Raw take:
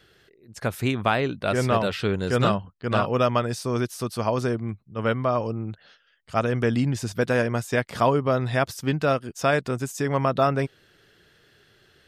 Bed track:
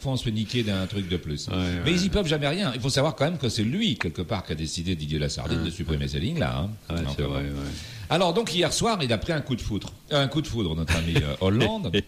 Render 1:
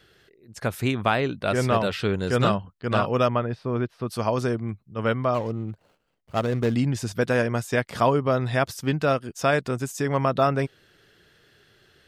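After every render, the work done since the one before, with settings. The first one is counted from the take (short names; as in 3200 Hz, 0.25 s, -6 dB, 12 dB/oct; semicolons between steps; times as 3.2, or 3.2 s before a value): 3.28–4.08 air absorption 410 m; 5.34–6.76 median filter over 25 samples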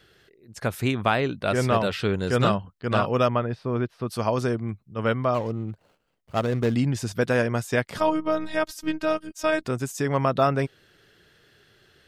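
7.98–9.65 robotiser 312 Hz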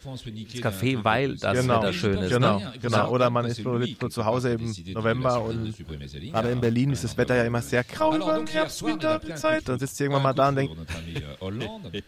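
add bed track -10 dB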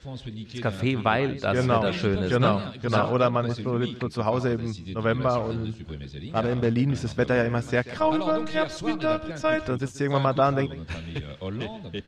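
air absorption 90 m; echo 0.135 s -17 dB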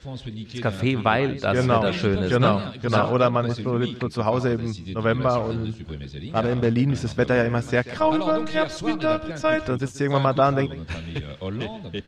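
gain +2.5 dB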